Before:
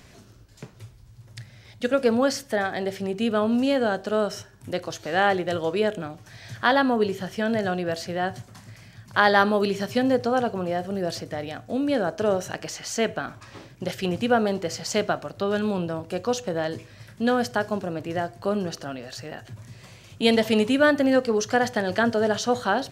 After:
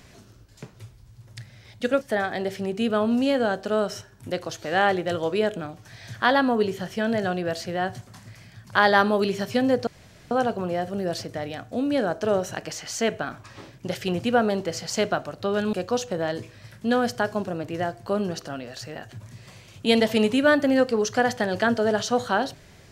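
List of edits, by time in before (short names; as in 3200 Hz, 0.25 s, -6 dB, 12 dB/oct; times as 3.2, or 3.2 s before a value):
2.01–2.42 cut
10.28 insert room tone 0.44 s
15.7–16.09 cut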